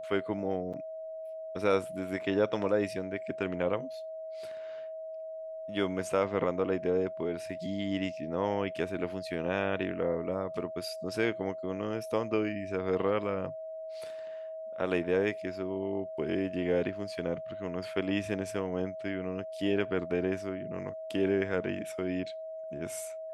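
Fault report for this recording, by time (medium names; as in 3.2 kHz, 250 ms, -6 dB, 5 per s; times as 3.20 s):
whine 640 Hz -38 dBFS
0.73–0.74 s: dropout 6.5 ms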